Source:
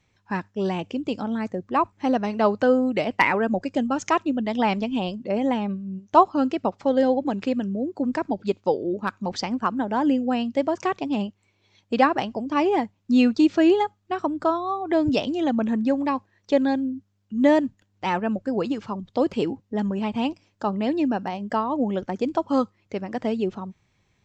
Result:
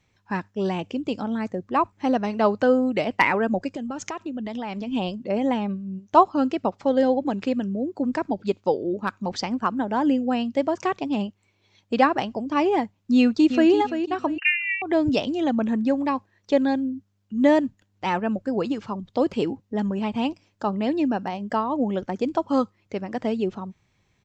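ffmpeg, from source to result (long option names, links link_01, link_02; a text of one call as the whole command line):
ffmpeg -i in.wav -filter_complex "[0:a]asplit=3[link_01][link_02][link_03];[link_01]afade=type=out:start_time=3.69:duration=0.02[link_04];[link_02]acompressor=threshold=-27dB:ratio=12:attack=3.2:release=140:knee=1:detection=peak,afade=type=in:start_time=3.69:duration=0.02,afade=type=out:start_time=4.86:duration=0.02[link_05];[link_03]afade=type=in:start_time=4.86:duration=0.02[link_06];[link_04][link_05][link_06]amix=inputs=3:normalize=0,asplit=2[link_07][link_08];[link_08]afade=type=in:start_time=13.16:duration=0.01,afade=type=out:start_time=13.71:duration=0.01,aecho=0:1:340|680|1020:0.354813|0.106444|0.0319332[link_09];[link_07][link_09]amix=inputs=2:normalize=0,asettb=1/sr,asplit=3[link_10][link_11][link_12];[link_10]atrim=end=14.384[link_13];[link_11]atrim=start=14.38:end=14.82,asetpts=PTS-STARTPTS,afade=type=in:duration=0.004:curve=qsin,afade=type=out:start_time=0.436:duration=0.004:curve=qsin,lowpass=frequency=2600:width_type=q:width=0.5098,lowpass=frequency=2600:width_type=q:width=0.6013,lowpass=frequency=2600:width_type=q:width=0.9,lowpass=frequency=2600:width_type=q:width=2.563,afreqshift=-3100[link_14];[link_12]atrim=start=14.816[link_15];[link_13][link_14]acrossfade=duration=0.004:curve1=hsin:curve2=qsin[link_16];[link_16][link_15]acrossfade=duration=0.004:curve1=qsin:curve2=hsin" out.wav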